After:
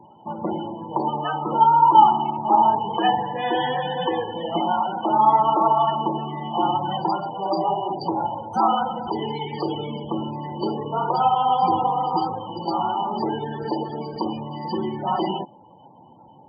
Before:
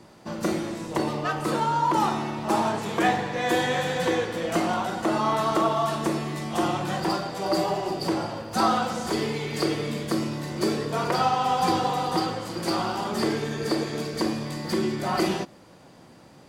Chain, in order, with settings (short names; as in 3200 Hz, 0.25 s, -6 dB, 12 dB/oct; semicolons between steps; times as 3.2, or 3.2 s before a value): small resonant body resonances 870/3000 Hz, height 16 dB, ringing for 35 ms; loudest bins only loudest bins 32; gain -1 dB